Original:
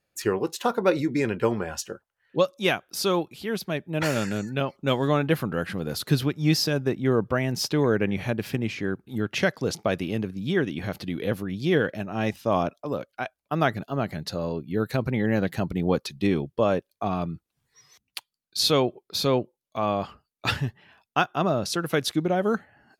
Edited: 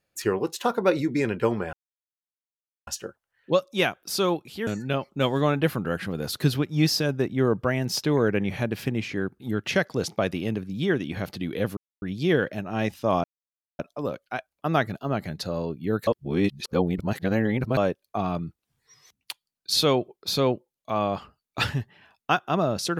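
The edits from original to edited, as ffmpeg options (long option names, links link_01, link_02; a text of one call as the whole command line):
ffmpeg -i in.wav -filter_complex "[0:a]asplit=7[link_01][link_02][link_03][link_04][link_05][link_06][link_07];[link_01]atrim=end=1.73,asetpts=PTS-STARTPTS,afade=type=out:start_time=1.726:duration=0.004:curve=hsin,apad=pad_dur=1.14[link_08];[link_02]atrim=start=1.73:end=3.532,asetpts=PTS-STARTPTS,afade=type=in:duration=0.004:curve=hsin[link_09];[link_03]atrim=start=4.338:end=11.44,asetpts=PTS-STARTPTS,afade=type=out:start_time=7.098:duration=0.004:curve=hsin,apad=pad_dur=0.25[link_10];[link_04]atrim=start=11.44:end=12.66,asetpts=PTS-STARTPTS,afade=type=in:duration=0.004:curve=hsin,afade=type=out:start_time=1.216:duration=0.004:curve=hsin,apad=pad_dur=0.55[link_11];[link_05]atrim=start=12.66:end=14.942,asetpts=PTS-STARTPTS,afade=type=in:duration=0.004:curve=hsin[link_12];[link_06]atrim=start=14.938:end=16.642,asetpts=PTS-STARTPTS,areverse[link_13];[link_07]atrim=start=16.638[link_14];[link_08][link_09]concat=n=2:v=0:a=1[link_15];[link_10][link_11][link_12]concat=n=3:v=0:a=1[link_16];[link_15][link_16]acrossfade=duration=0.004:curve1=hsin:curve2=hsin[link_17];[link_17][link_13]acrossfade=duration=0.004:curve1=hsin:curve2=hsin[link_18];[link_18][link_14]acrossfade=duration=0.004:curve1=hsin:curve2=hsin" out.wav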